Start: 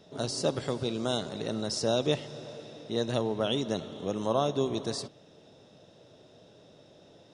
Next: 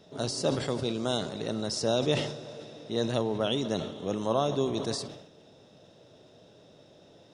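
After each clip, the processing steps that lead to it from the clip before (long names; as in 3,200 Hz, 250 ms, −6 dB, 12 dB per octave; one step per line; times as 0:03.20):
level that may fall only so fast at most 69 dB per second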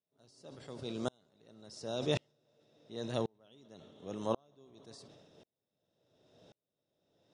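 tremolo with a ramp in dB swelling 0.92 Hz, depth 39 dB
level −3 dB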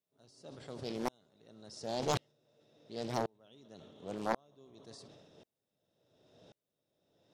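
highs frequency-modulated by the lows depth 0.88 ms
level +1 dB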